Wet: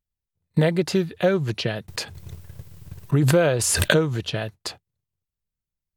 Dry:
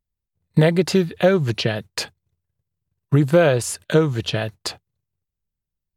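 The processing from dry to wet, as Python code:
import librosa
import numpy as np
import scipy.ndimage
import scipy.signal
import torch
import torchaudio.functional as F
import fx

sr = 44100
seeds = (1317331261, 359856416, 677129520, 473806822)

y = fx.pre_swell(x, sr, db_per_s=23.0, at=(1.88, 4.24))
y = F.gain(torch.from_numpy(y), -4.0).numpy()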